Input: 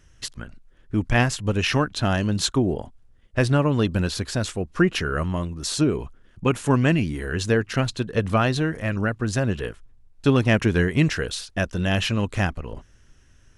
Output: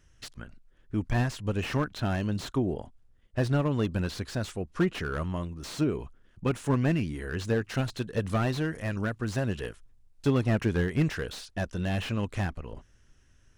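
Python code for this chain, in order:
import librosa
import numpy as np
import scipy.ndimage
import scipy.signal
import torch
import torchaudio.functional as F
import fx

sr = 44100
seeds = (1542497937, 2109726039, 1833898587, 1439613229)

y = fx.high_shelf(x, sr, hz=4200.0, db=7.5, at=(7.64, 10.28))
y = fx.slew_limit(y, sr, full_power_hz=110.0)
y = y * librosa.db_to_amplitude(-6.5)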